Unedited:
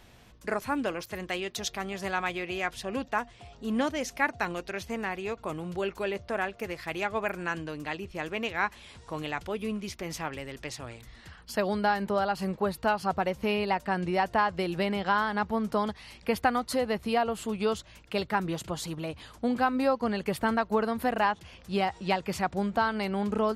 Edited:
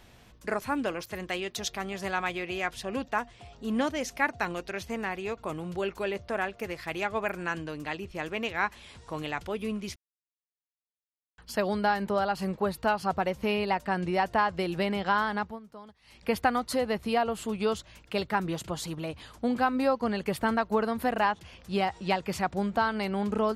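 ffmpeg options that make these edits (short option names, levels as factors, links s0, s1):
-filter_complex "[0:a]asplit=5[s0][s1][s2][s3][s4];[s0]atrim=end=9.96,asetpts=PTS-STARTPTS,afade=t=out:st=9.956:d=0.004:c=hsin[s5];[s1]atrim=start=9.96:end=11.38,asetpts=PTS-STARTPTS,volume=0[s6];[s2]atrim=start=11.38:end=15.6,asetpts=PTS-STARTPTS,afade=t=in:d=0.004:c=hsin,afade=t=out:st=3.95:d=0.27:silence=0.112202[s7];[s3]atrim=start=15.6:end=16.01,asetpts=PTS-STARTPTS,volume=0.112[s8];[s4]atrim=start=16.01,asetpts=PTS-STARTPTS,afade=t=in:d=0.27:silence=0.112202[s9];[s5][s6][s7][s8][s9]concat=n=5:v=0:a=1"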